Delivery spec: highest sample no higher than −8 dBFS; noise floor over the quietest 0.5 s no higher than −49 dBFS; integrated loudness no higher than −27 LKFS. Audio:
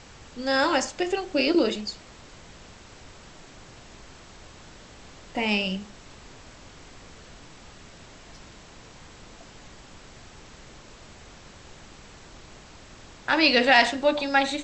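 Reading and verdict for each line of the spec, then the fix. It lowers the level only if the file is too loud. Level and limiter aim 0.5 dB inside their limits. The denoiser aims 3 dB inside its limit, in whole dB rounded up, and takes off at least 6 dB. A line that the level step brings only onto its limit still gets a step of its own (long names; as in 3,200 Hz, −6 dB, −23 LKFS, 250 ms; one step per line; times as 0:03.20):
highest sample −5.0 dBFS: out of spec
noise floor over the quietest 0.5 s −47 dBFS: out of spec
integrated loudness −23.0 LKFS: out of spec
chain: level −4.5 dB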